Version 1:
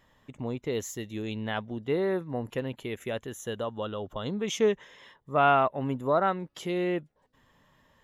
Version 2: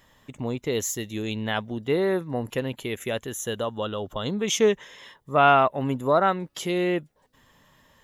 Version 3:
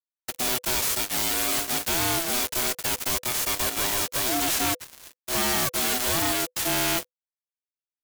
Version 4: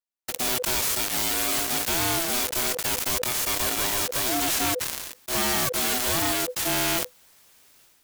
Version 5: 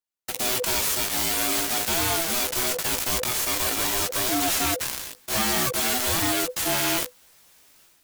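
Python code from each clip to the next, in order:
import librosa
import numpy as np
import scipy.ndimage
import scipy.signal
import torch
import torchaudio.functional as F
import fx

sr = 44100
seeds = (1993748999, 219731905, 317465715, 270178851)

y1 = fx.high_shelf(x, sr, hz=3800.0, db=8.0)
y1 = F.gain(torch.from_numpy(y1), 4.0).numpy()
y2 = fx.envelope_flatten(y1, sr, power=0.1)
y2 = fx.fuzz(y2, sr, gain_db=41.0, gate_db=-41.0)
y2 = y2 * np.sin(2.0 * np.pi * 500.0 * np.arange(len(y2)) / sr)
y2 = F.gain(torch.from_numpy(y2), -6.5).numpy()
y3 = fx.sustainer(y2, sr, db_per_s=37.0)
y4 = fx.chorus_voices(y3, sr, voices=2, hz=0.47, base_ms=14, depth_ms=4.3, mix_pct=35)
y4 = F.gain(torch.from_numpy(y4), 3.5).numpy()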